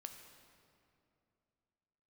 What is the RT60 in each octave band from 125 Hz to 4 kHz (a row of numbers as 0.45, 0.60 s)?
2.9, 3.0, 2.8, 2.5, 2.1, 1.7 s